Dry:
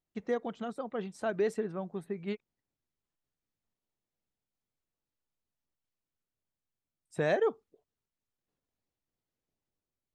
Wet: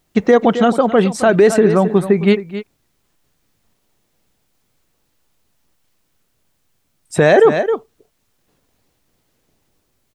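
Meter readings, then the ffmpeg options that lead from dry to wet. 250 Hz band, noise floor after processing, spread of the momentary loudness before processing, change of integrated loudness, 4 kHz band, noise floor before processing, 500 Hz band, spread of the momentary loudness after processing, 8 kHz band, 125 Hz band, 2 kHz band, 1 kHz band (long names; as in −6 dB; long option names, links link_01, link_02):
+23.5 dB, −66 dBFS, 10 LU, +20.5 dB, +21.5 dB, below −85 dBFS, +20.5 dB, 11 LU, can't be measured, +22.5 dB, +20.0 dB, +22.0 dB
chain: -filter_complex "[0:a]asplit=2[link_01][link_02];[link_02]aecho=0:1:265:0.188[link_03];[link_01][link_03]amix=inputs=2:normalize=0,alimiter=level_in=26dB:limit=-1dB:release=50:level=0:latency=1,volume=-1dB"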